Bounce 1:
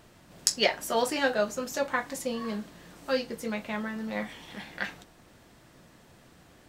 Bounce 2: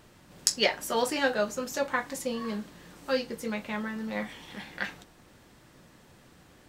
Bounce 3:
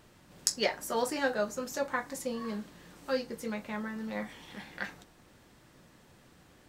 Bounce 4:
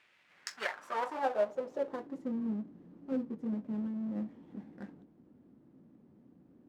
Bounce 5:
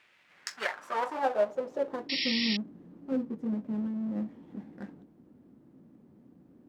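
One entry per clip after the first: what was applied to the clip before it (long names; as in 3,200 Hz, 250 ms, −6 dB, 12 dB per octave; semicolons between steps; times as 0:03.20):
notch filter 670 Hz, Q 12
dynamic equaliser 3,000 Hz, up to −6 dB, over −48 dBFS, Q 1.6; level −3 dB
each half-wave held at its own peak; band-pass filter sweep 2,300 Hz → 250 Hz, 0:00.25–0:02.35
sound drawn into the spectrogram noise, 0:02.09–0:02.57, 1,800–5,600 Hz −35 dBFS; level +3.5 dB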